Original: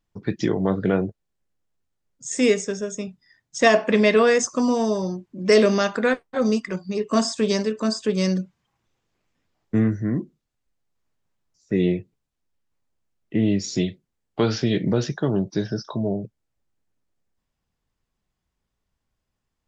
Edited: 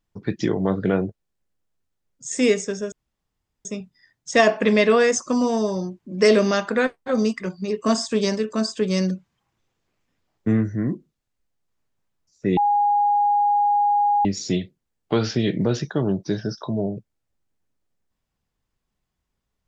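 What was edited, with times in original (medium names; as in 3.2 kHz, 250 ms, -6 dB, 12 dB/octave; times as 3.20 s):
2.92 s: insert room tone 0.73 s
11.84–13.52 s: bleep 822 Hz -15.5 dBFS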